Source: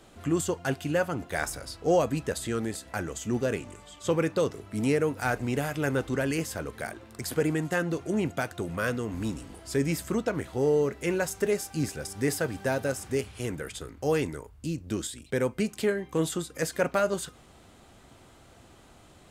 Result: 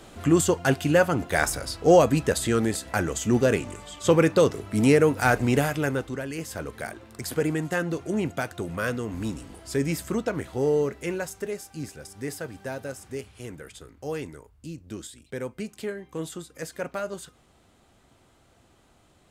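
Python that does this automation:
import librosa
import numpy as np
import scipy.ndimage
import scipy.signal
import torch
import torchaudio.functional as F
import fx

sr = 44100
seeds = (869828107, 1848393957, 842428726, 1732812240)

y = fx.gain(x, sr, db=fx.line((5.59, 7.0), (6.29, -6.0), (6.59, 1.0), (10.81, 1.0), (11.52, -6.0)))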